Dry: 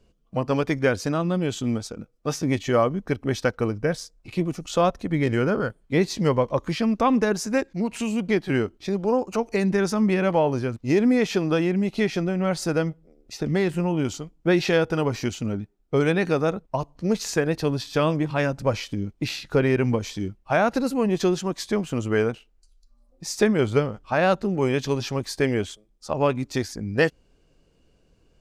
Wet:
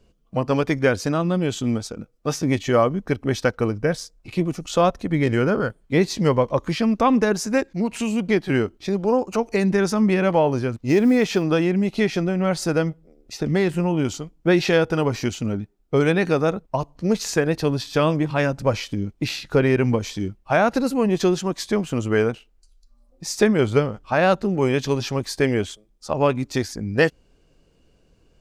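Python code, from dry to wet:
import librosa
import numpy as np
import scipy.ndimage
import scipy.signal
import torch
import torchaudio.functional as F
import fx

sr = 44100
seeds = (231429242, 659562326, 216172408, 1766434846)

y = fx.quant_companded(x, sr, bits=8, at=(10.89, 11.43))
y = y * 10.0 ** (2.5 / 20.0)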